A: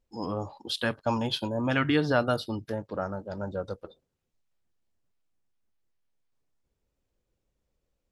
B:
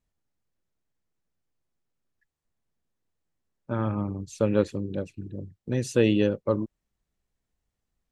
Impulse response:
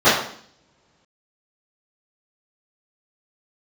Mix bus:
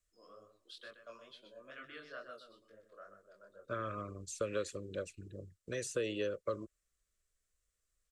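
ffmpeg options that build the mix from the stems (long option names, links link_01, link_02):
-filter_complex "[0:a]acrossover=split=460[link_01][link_02];[link_01]aeval=exprs='val(0)*(1-0.5/2+0.5/2*cos(2*PI*2.2*n/s))':channel_layout=same[link_03];[link_02]aeval=exprs='val(0)*(1-0.5/2-0.5/2*cos(2*PI*2.2*n/s))':channel_layout=same[link_04];[link_03][link_04]amix=inputs=2:normalize=0,flanger=delay=19:depth=7.3:speed=2.2,acrossover=split=180 4200:gain=0.141 1 0.224[link_05][link_06][link_07];[link_05][link_06][link_07]amix=inputs=3:normalize=0,volume=-16dB,asplit=2[link_08][link_09];[link_09]volume=-9.5dB[link_10];[1:a]acrossover=split=430|3000[link_11][link_12][link_13];[link_12]acompressor=threshold=-28dB:ratio=6[link_14];[link_11][link_14][link_13]amix=inputs=3:normalize=0,volume=-3dB[link_15];[link_10]aecho=0:1:124:1[link_16];[link_08][link_15][link_16]amix=inputs=3:normalize=0,equalizer=frequency=125:width_type=o:width=1:gain=-9,equalizer=frequency=250:width_type=o:width=1:gain=-12,equalizer=frequency=1000:width_type=o:width=1:gain=7,equalizer=frequency=8000:width_type=o:width=1:gain=11,acrossover=split=390|1400[link_17][link_18][link_19];[link_17]acompressor=threshold=-44dB:ratio=4[link_20];[link_18]acompressor=threshold=-33dB:ratio=4[link_21];[link_19]acompressor=threshold=-44dB:ratio=4[link_22];[link_20][link_21][link_22]amix=inputs=3:normalize=0,asuperstop=centerf=860:order=4:qfactor=1.5"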